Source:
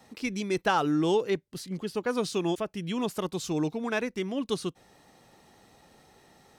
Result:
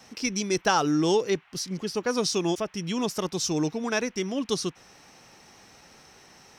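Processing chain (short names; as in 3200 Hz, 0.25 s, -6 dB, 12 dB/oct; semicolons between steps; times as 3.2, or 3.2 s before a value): bell 5600 Hz +14 dB 0.44 oct; band noise 750–2900 Hz -62 dBFS; gain +2 dB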